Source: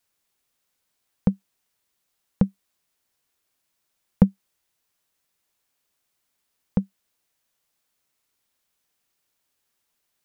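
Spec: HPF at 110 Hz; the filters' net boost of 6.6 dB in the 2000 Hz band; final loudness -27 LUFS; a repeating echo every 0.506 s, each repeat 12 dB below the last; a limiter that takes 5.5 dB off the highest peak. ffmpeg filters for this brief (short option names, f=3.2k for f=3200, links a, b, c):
-af "highpass=110,equalizer=f=2k:t=o:g=8.5,alimiter=limit=-8.5dB:level=0:latency=1,aecho=1:1:506|1012|1518:0.251|0.0628|0.0157,volume=4.5dB"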